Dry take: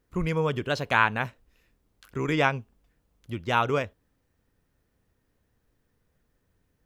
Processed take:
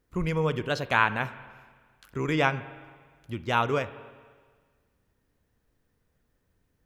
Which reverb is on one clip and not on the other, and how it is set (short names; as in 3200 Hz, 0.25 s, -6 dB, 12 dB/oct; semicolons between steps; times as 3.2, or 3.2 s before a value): spring tank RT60 1.6 s, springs 38/51 ms, chirp 45 ms, DRR 14 dB; gain -1 dB